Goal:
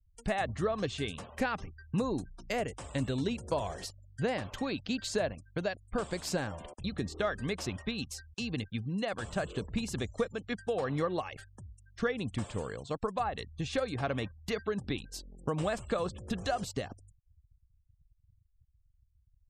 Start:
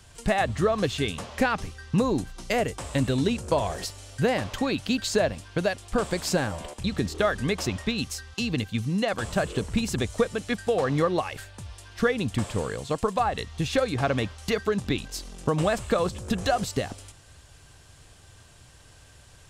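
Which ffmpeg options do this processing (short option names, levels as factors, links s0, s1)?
-af "anlmdn=0.158,afftfilt=real='re*gte(hypot(re,im),0.00631)':imag='im*gte(hypot(re,im),0.00631)':win_size=1024:overlap=0.75,volume=0.398"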